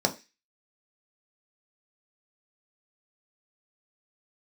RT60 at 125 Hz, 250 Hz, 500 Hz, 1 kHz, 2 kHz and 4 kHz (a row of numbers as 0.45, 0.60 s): 0.20, 0.25, 0.25, 0.25, 0.40, 0.40 s